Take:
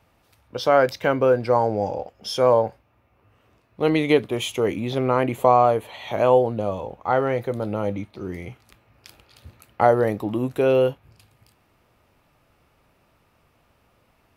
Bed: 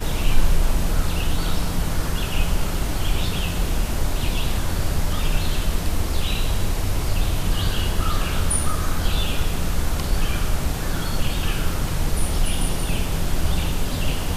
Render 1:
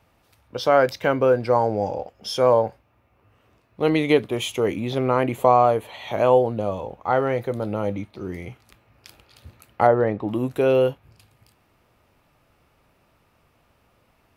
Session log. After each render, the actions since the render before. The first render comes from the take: 9.87–10.28 LPF 2600 Hz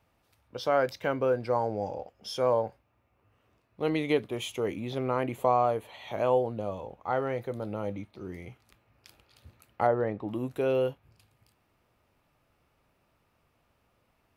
gain -8.5 dB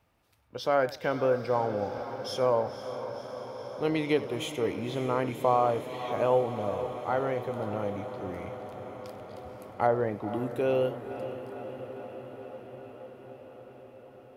diffused feedback echo 0.521 s, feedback 76%, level -11.5 dB; warbling echo 97 ms, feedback 30%, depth 151 cents, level -18 dB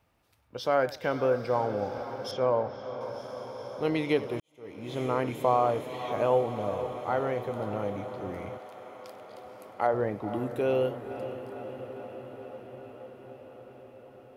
2.31–3.01 air absorption 170 m; 4.4–5.01 fade in quadratic; 8.57–9.93 HPF 800 Hz -> 350 Hz 6 dB/oct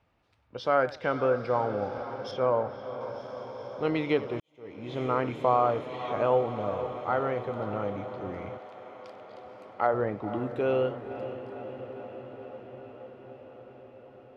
LPF 4200 Hz 12 dB/oct; dynamic EQ 1300 Hz, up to +6 dB, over -50 dBFS, Q 4.4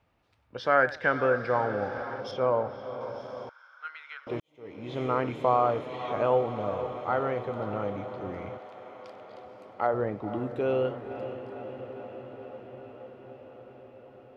0.56–2.2 bell 1700 Hz +13.5 dB 0.38 oct; 3.49–4.27 ladder high-pass 1400 Hz, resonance 85%; 9.45–10.85 bell 1700 Hz -2.5 dB 2.4 oct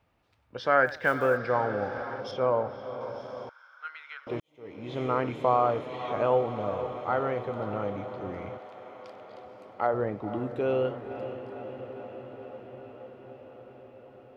0.86–1.39 block floating point 7-bit

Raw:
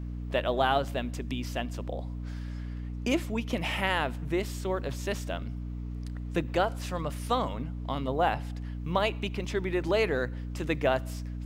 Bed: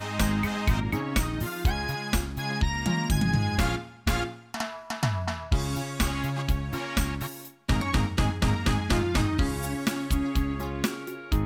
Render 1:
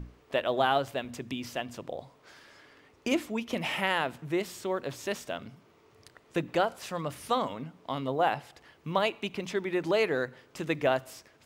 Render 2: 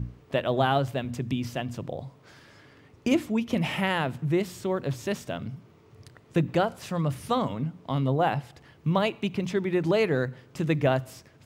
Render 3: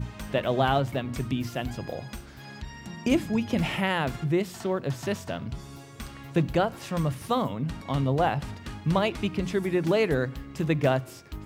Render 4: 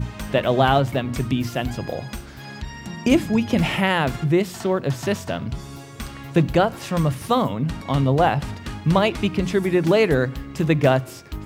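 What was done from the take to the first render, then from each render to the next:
notches 60/120/180/240/300 Hz
bell 120 Hz +14.5 dB 2 oct
add bed -14 dB
gain +6.5 dB

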